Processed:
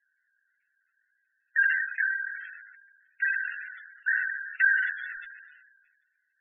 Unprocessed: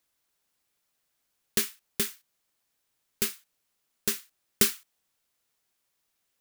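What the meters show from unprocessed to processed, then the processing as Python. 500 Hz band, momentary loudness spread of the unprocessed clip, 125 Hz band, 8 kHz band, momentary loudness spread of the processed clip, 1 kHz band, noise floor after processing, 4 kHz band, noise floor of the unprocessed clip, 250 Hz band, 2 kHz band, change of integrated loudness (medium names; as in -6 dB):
under -40 dB, 11 LU, under -40 dB, under -40 dB, 17 LU, no reading, -77 dBFS, under -20 dB, -78 dBFS, under -40 dB, +18.5 dB, +2.0 dB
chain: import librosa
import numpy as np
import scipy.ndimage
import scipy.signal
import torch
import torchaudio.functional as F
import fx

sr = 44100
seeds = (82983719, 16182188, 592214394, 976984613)

y = fx.highpass_res(x, sr, hz=1600.0, q=11.0)
y = fx.lpc_vocoder(y, sr, seeds[0], excitation='pitch_kept', order=8)
y = fx.room_early_taps(y, sr, ms=(25, 69), db=(-5.5, -9.0))
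y = fx.spec_gate(y, sr, threshold_db=-10, keep='strong')
y = fx.sustainer(y, sr, db_per_s=39.0)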